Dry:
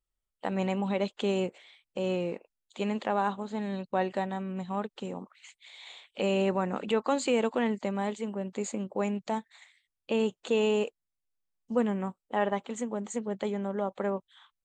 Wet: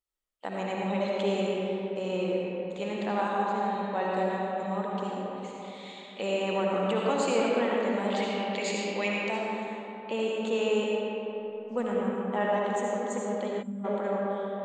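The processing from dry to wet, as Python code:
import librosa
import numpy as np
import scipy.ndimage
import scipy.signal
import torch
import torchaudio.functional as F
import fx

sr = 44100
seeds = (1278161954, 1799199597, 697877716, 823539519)

y = fx.band_shelf(x, sr, hz=3200.0, db=14.5, octaves=1.7, at=(8.1, 9.14))
y = fx.rev_freeverb(y, sr, rt60_s=3.7, hf_ratio=0.45, predelay_ms=35, drr_db=-4.0)
y = fx.spec_box(y, sr, start_s=13.62, length_s=0.22, low_hz=270.0, high_hz=7100.0, gain_db=-20)
y = fx.low_shelf(y, sr, hz=170.0, db=-10.5)
y = F.gain(torch.from_numpy(y), -2.5).numpy()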